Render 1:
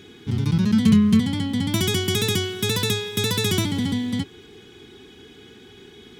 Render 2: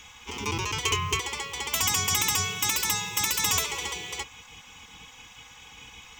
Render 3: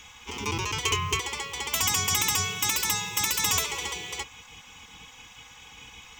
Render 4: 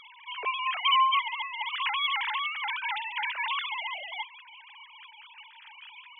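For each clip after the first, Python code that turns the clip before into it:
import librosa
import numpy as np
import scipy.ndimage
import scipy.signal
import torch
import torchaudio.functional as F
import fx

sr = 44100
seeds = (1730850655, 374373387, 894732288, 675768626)

y1 = fx.ripple_eq(x, sr, per_octave=0.74, db=14)
y1 = fx.spec_gate(y1, sr, threshold_db=-15, keep='weak')
y1 = fx.peak_eq(y1, sr, hz=280.0, db=-8.5, octaves=1.3)
y1 = y1 * 10.0 ** (4.5 / 20.0)
y2 = y1
y3 = fx.sine_speech(y2, sr)
y3 = y3 * 10.0 ** (-1.5 / 20.0)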